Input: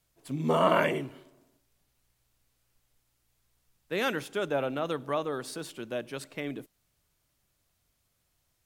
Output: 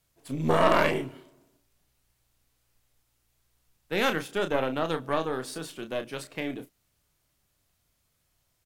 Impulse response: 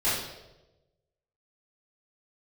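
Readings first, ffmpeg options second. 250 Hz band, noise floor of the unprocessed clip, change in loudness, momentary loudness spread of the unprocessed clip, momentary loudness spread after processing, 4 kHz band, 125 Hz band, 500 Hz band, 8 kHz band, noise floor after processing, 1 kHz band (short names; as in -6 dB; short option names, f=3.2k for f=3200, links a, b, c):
+2.5 dB, -76 dBFS, +2.5 dB, 15 LU, 15 LU, +3.5 dB, +2.5 dB, +2.0 dB, +2.5 dB, -74 dBFS, +2.5 dB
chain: -filter_complex "[0:a]aeval=exprs='0.376*(cos(1*acos(clip(val(0)/0.376,-1,1)))-cos(1*PI/2))+0.0473*(cos(6*acos(clip(val(0)/0.376,-1,1)))-cos(6*PI/2))':c=same,asplit=2[a][b];[b]adelay=31,volume=-8dB[c];[a][c]amix=inputs=2:normalize=0,volume=1dB"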